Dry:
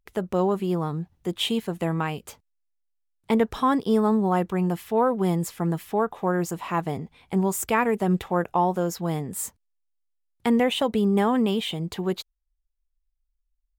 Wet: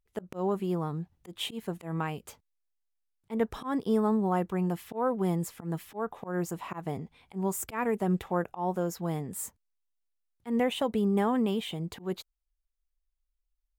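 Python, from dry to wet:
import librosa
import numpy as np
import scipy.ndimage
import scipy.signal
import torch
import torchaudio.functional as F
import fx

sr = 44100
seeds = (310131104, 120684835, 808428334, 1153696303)

y = fx.dynamic_eq(x, sr, hz=4000.0, q=0.85, threshold_db=-43.0, ratio=4.0, max_db=-4)
y = fx.auto_swell(y, sr, attack_ms=137.0)
y = F.gain(torch.from_numpy(y), -5.0).numpy()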